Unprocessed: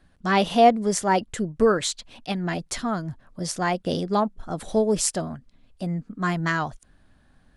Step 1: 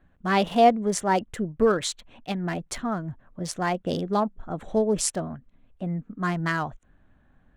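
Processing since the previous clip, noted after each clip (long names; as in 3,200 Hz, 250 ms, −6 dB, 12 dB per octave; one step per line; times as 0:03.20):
adaptive Wiener filter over 9 samples
level −1.5 dB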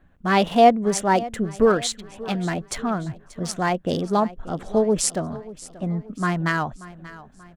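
repeating echo 584 ms, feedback 47%, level −18 dB
level +3.5 dB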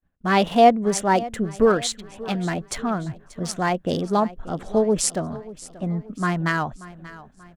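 downward expander −45 dBFS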